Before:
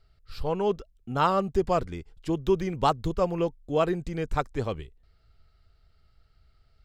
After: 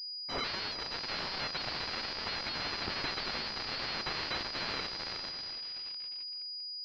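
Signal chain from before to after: split-band scrambler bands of 4 kHz; on a send: echo that smears into a reverb 454 ms, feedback 47%, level -8.5 dB; on the sum: waveshaping leveller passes 5; class-D stage that switches slowly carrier 4.9 kHz; trim -8 dB

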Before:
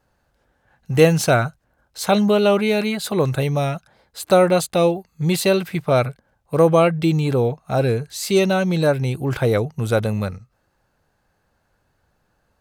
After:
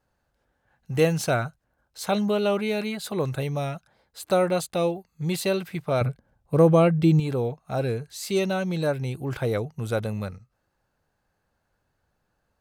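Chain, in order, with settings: 6.01–7.20 s: bass shelf 430 Hz +9.5 dB; trim -7.5 dB

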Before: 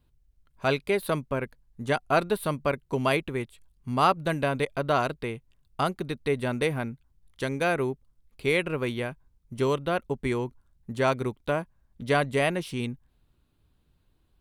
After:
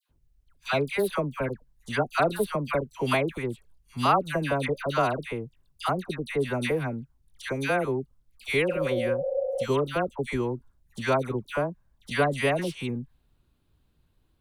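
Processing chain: spectral replace 8.63–9.54 s, 430–860 Hz before; phase dispersion lows, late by 96 ms, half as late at 1.3 kHz

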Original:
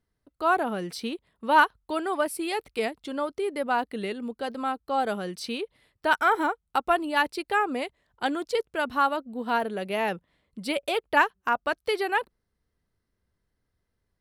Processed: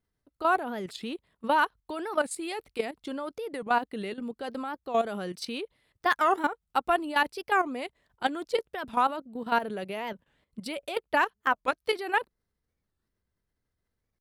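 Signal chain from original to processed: level held to a coarse grid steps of 12 dB; warped record 45 rpm, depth 250 cents; trim +2 dB

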